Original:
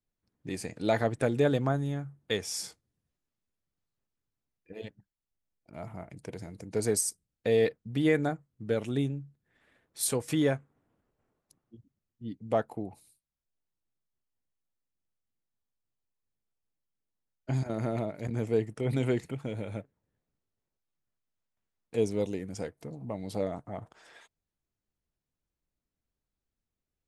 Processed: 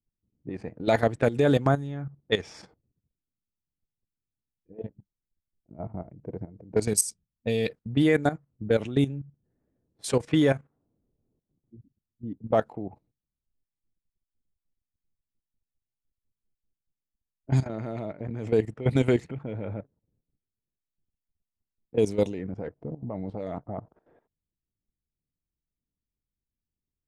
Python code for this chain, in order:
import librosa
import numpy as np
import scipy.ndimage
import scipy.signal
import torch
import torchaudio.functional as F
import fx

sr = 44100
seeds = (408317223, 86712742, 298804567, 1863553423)

y = fx.env_lowpass(x, sr, base_hz=310.0, full_db=-24.0)
y = fx.level_steps(y, sr, step_db=14)
y = fx.spec_box(y, sr, start_s=6.83, length_s=0.86, low_hz=250.0, high_hz=2200.0, gain_db=-7)
y = F.gain(torch.from_numpy(y), 8.5).numpy()